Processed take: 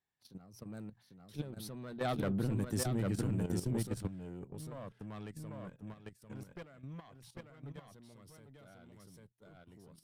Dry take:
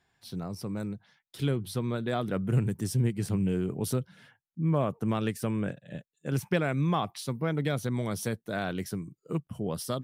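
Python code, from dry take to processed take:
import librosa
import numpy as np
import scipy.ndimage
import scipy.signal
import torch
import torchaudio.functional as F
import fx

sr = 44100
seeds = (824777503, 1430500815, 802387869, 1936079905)

p1 = fx.diode_clip(x, sr, knee_db=-30.5)
p2 = fx.doppler_pass(p1, sr, speed_mps=14, closest_m=7.4, pass_at_s=2.6)
p3 = fx.hum_notches(p2, sr, base_hz=60, count=2)
p4 = p3 + fx.echo_single(p3, sr, ms=797, db=-3.5, dry=0)
p5 = fx.level_steps(p4, sr, step_db=12)
y = p5 * librosa.db_to_amplitude(3.0)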